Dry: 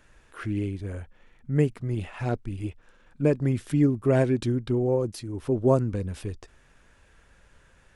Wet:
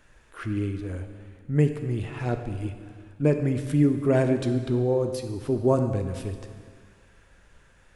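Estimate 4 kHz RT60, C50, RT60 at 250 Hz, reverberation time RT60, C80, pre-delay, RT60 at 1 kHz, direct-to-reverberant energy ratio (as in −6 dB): 1.8 s, 8.0 dB, 1.9 s, 1.9 s, 9.5 dB, 6 ms, 1.9 s, 6.5 dB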